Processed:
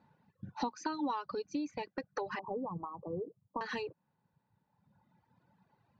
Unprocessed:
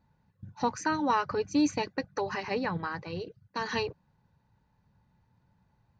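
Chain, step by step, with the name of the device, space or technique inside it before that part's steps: AM radio (BPF 180–3700 Hz; compressor 10:1, threshold -39 dBFS, peak gain reduction 17 dB; soft clip -29 dBFS, distortion -25 dB); bell 2000 Hz -2 dB; 2.39–3.61 steep low-pass 1200 Hz 96 dB/oct; reverb removal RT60 1.9 s; 0.62–1.47 ten-band EQ 125 Hz -9 dB, 250 Hz +6 dB, 500 Hz -3 dB, 1000 Hz +4 dB, 2000 Hz -10 dB, 4000 Hz +10 dB; gain +6 dB

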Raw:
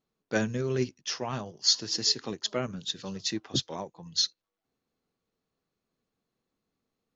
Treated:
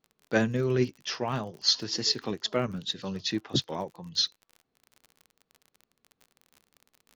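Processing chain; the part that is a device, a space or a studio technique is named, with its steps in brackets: lo-fi chain (LPF 4400 Hz 12 dB/oct; wow and flutter; crackle 38/s -43 dBFS); gain +3 dB

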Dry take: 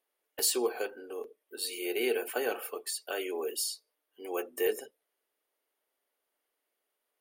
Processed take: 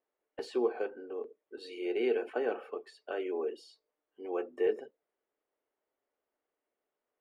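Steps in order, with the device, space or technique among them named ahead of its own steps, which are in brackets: phone in a pocket (LPF 3000 Hz 12 dB/oct; bell 210 Hz +3.5 dB 2.9 oct; high shelf 2300 Hz -11 dB); 1.6–2.3 bell 6200 Hz +5.5 dB 1.8 oct; gain -1.5 dB

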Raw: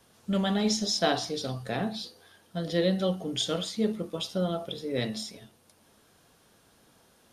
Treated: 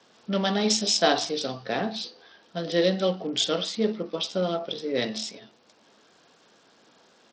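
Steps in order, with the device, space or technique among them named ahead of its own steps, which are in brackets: Bluetooth headset (HPF 240 Hz 12 dB/oct; downsampling 16000 Hz; gain +4.5 dB; SBC 64 kbps 44100 Hz)

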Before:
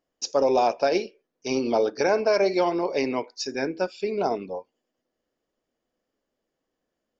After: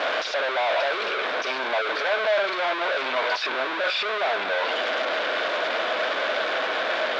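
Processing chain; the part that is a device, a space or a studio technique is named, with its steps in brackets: 3.26–3.84 treble ducked by the level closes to 590 Hz, closed at -24.5 dBFS; home computer beeper (infinite clipping; speaker cabinet 580–4100 Hz, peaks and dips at 630 Hz +10 dB, 1100 Hz +4 dB, 1500 Hz +10 dB, 2300 Hz +6 dB, 3600 Hz +7 dB)

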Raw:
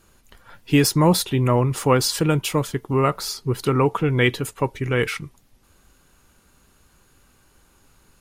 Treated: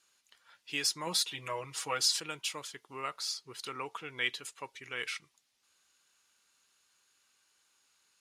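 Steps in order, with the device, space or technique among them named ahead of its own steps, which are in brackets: 1.06–2.2 comb 6.3 ms, depth 89%; piezo pickup straight into a mixer (LPF 5000 Hz 12 dB/oct; differentiator)

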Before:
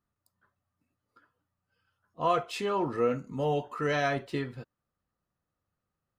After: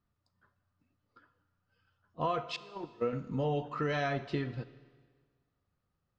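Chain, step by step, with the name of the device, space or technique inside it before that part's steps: LPF 5200 Hz 24 dB/oct; 2.56–3.13 gate -25 dBFS, range -29 dB; ASMR close-microphone chain (low shelf 200 Hz +6 dB; compressor 5:1, threshold -29 dBFS, peak gain reduction 8 dB; high shelf 6800 Hz +5 dB); Schroeder reverb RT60 1.6 s, combs from 27 ms, DRR 14.5 dB

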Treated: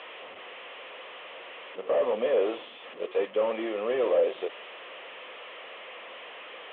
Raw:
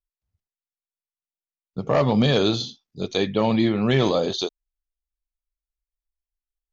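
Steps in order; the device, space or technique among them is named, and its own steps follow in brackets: digital answering machine (BPF 360–3100 Hz; delta modulation 16 kbps, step -34.5 dBFS; speaker cabinet 500–3600 Hz, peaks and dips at 510 Hz +8 dB, 850 Hz -6 dB, 1500 Hz -9 dB, 2200 Hz -3 dB, 3200 Hz +4 dB)

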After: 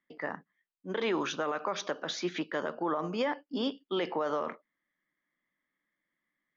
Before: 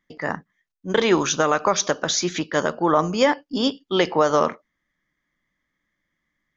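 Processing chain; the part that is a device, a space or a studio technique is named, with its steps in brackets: DJ mixer with the lows and highs turned down (three-band isolator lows -17 dB, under 180 Hz, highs -22 dB, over 4100 Hz; limiter -15 dBFS, peak gain reduction 9.5 dB); gain -7 dB

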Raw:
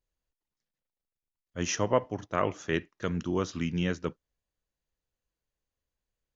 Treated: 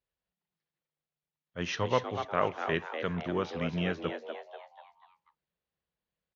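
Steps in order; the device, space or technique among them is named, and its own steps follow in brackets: frequency-shifting delay pedal into a guitar cabinet (frequency-shifting echo 0.244 s, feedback 44%, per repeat +150 Hz, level -8 dB; speaker cabinet 81–4200 Hz, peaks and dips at 99 Hz -6 dB, 210 Hz -4 dB, 300 Hz -9 dB); 1.72–2.25 thirty-one-band EQ 100 Hz +7 dB, 630 Hz -7 dB, 4000 Hz +9 dB

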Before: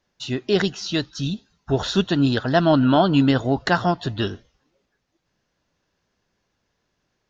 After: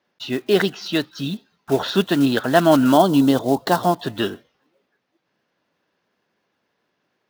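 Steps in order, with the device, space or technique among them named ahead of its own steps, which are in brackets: early digital voice recorder (BPF 210–3700 Hz; block floating point 5-bit); 2.92–4.02 band shelf 1900 Hz -9 dB 1.3 oct; gain +3.5 dB

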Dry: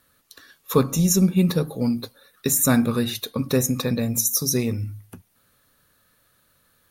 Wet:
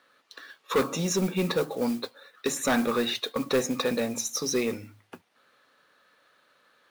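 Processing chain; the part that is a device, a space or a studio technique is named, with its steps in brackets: carbon microphone (BPF 400–3600 Hz; soft clip -22.5 dBFS, distortion -10 dB; modulation noise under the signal 20 dB); gain +4.5 dB

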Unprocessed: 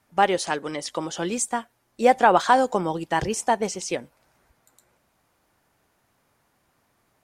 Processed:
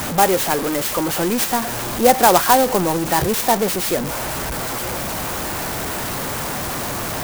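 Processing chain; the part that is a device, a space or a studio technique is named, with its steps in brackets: early CD player with a faulty converter (zero-crossing step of -21 dBFS; clock jitter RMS 0.077 ms); gain +2.5 dB

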